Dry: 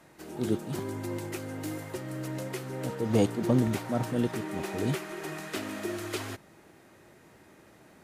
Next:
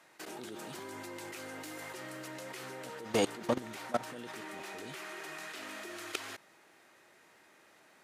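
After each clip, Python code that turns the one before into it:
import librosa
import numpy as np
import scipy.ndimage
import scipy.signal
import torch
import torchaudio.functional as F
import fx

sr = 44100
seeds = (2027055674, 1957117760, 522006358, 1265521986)

y = fx.highpass(x, sr, hz=1300.0, slope=6)
y = fx.high_shelf(y, sr, hz=8300.0, db=-7.5)
y = fx.level_steps(y, sr, step_db=18)
y = y * 10.0 ** (9.5 / 20.0)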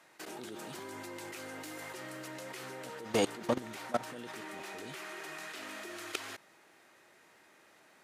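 y = x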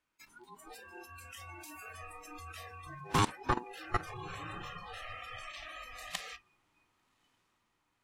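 y = x * np.sin(2.0 * np.pi * 610.0 * np.arange(len(x)) / sr)
y = fx.echo_diffused(y, sr, ms=1147, feedback_pct=52, wet_db=-12.0)
y = fx.noise_reduce_blind(y, sr, reduce_db=23)
y = y * 10.0 ** (3.5 / 20.0)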